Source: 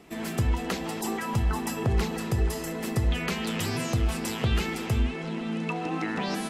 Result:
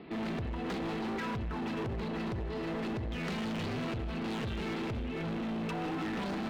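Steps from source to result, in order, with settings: tilt shelf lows +4.5 dB, about 920 Hz; compression 6:1, threshold -25 dBFS, peak gain reduction 9.5 dB; high-pass 150 Hz 6 dB/octave; saturation -28 dBFS, distortion -14 dB; elliptic low-pass 4.3 kHz; peaking EQ 710 Hz -3 dB 1.2 oct; on a send at -20 dB: reverberation RT60 0.40 s, pre-delay 76 ms; on the sum: hard clipper -37.5 dBFS, distortion -10 dB; trim +4 dB

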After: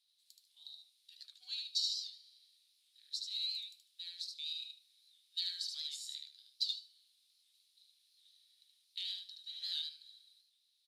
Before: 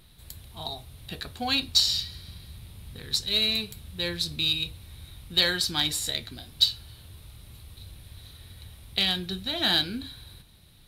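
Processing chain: ladder band-pass 5.5 kHz, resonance 40%; feedback delay 75 ms, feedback 21%, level -4 dB; warped record 78 rpm, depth 100 cents; trim -6 dB

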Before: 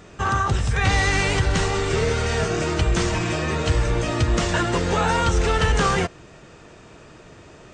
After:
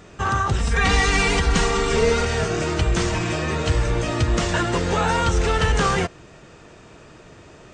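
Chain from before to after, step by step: 0.59–2.25 s: comb 4.3 ms, depth 91%

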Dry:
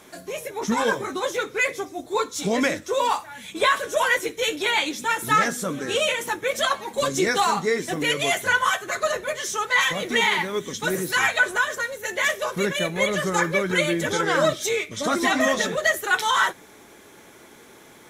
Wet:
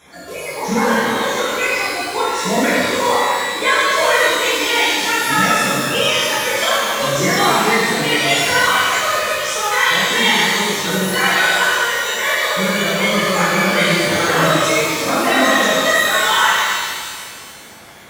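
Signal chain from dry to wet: coarse spectral quantiser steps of 30 dB; pitch-shifted reverb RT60 1.9 s, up +12 st, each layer -8 dB, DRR -10 dB; trim -2.5 dB

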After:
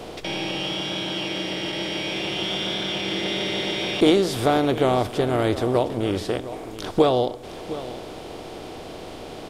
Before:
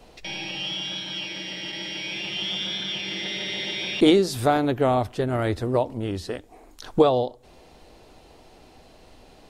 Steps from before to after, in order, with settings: spectral levelling over time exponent 0.6; delay 710 ms -14.5 dB; trim -2 dB

